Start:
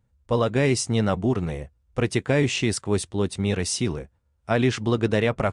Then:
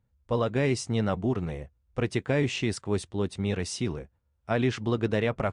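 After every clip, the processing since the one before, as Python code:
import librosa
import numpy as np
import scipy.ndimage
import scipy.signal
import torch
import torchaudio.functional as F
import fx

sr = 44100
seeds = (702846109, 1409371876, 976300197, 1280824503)

y = fx.high_shelf(x, sr, hz=7900.0, db=-11.0)
y = y * 10.0 ** (-4.5 / 20.0)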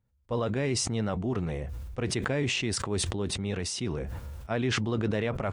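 y = fx.sustainer(x, sr, db_per_s=20.0)
y = y * 10.0 ** (-4.0 / 20.0)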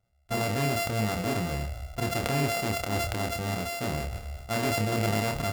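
y = np.r_[np.sort(x[:len(x) // 64 * 64].reshape(-1, 64), axis=1).ravel(), x[len(x) // 64 * 64:]]
y = fx.doubler(y, sr, ms=28.0, db=-4.5)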